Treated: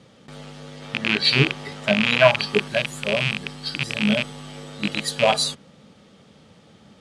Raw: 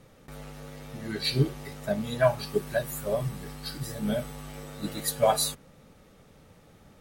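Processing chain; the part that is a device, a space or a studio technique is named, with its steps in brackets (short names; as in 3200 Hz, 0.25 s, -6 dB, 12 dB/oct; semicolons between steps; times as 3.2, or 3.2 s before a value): car door speaker with a rattle (rattling part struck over -36 dBFS, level -16 dBFS; speaker cabinet 99–8800 Hz, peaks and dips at 210 Hz +6 dB, 3200 Hz +8 dB, 4600 Hz +5 dB); 0.82–2.68 bell 1300 Hz +5.5 dB 2.5 oct; gain +3.5 dB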